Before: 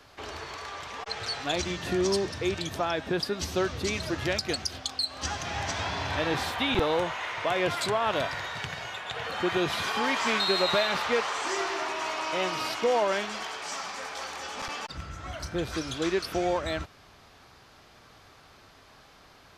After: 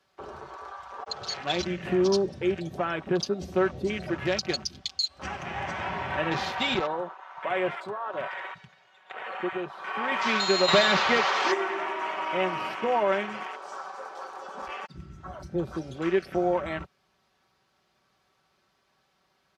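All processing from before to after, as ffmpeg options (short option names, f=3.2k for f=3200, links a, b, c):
-filter_complex "[0:a]asettb=1/sr,asplit=3[a][b][c];[a]atrim=end=6.764[d];[b]atrim=start=6.76:end=10.12,asetpts=PTS-STARTPTS,afade=t=in:d=0.004:c=qsin,afade=t=out:st=3.356:d=0.004:c=qsin,lowpass=f=3.6k:p=1,lowshelf=f=270:g=-9.5,tremolo=f=1.2:d=0.49[e];[c]atrim=start=10.116[f];[d][e]acrossfade=d=0.004:c1=hsin:c2=qsin[g];[g][f]acrossfade=d=0.004:c1=qsin:c2=hsin,asettb=1/sr,asplit=3[h][i][j];[h]atrim=end=10.684[k];[i]atrim=start=10.68:end=11.54,asetpts=PTS-STARTPTS,afade=t=in:d=0.004:c=qsin,afade=t=out:st=0.856:d=0.004:c=qsin,lowpass=7.1k,acontrast=46,aeval=exprs='clip(val(0),-1,0.119)':c=same[l];[j]atrim=start=11.536[m];[k][l]acrossfade=d=0.004:c1=hsin:c2=qsin[n];[n][m]acrossfade=d=0.004:c1=qsin:c2=hsin,afwtdn=0.0178,highpass=71,aecho=1:1:5.3:0.54"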